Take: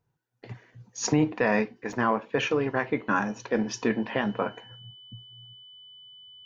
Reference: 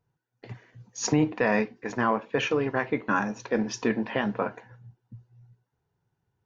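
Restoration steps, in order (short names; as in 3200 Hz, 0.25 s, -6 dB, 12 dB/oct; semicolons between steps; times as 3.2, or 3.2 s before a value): notch 3000 Hz, Q 30; interpolate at 1.93, 2.5 ms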